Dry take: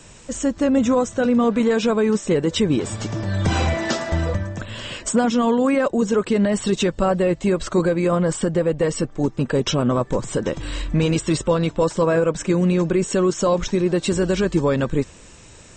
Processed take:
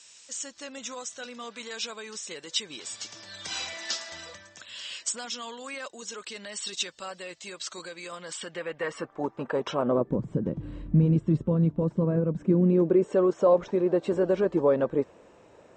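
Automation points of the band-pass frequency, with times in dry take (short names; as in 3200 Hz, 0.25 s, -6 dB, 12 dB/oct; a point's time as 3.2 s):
band-pass, Q 1.3
8.17 s 5000 Hz
9.18 s 910 Hz
9.77 s 910 Hz
10.2 s 170 Hz
12.31 s 170 Hz
13.16 s 580 Hz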